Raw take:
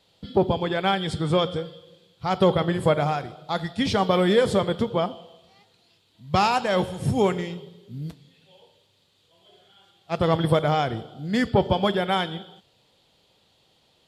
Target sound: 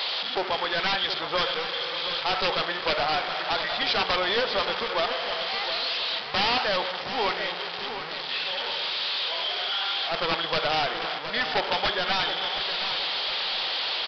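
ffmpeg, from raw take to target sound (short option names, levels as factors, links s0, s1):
-af "aeval=exprs='val(0)+0.5*0.0794*sgn(val(0))':c=same,highpass=870,aeval=exprs='(mod(7.08*val(0)+1,2)-1)/7.08':c=same,aecho=1:1:719|1438|2157|2876:0.316|0.126|0.0506|0.0202,aresample=11025,aresample=44100,volume=1.19"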